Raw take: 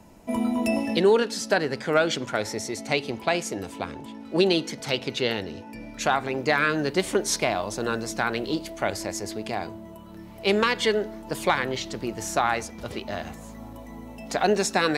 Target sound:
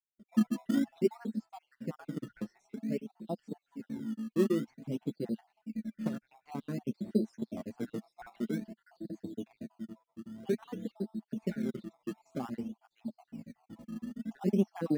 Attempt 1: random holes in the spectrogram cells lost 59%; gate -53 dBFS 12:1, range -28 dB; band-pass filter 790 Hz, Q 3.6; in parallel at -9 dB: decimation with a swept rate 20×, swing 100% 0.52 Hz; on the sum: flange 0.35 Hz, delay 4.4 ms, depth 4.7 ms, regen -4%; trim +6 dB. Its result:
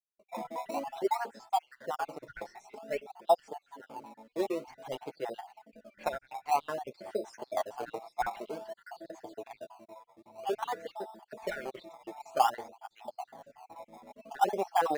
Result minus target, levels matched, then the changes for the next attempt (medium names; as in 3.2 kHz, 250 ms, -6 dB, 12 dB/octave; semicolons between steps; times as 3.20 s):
1 kHz band +18.0 dB
change: band-pass filter 220 Hz, Q 3.6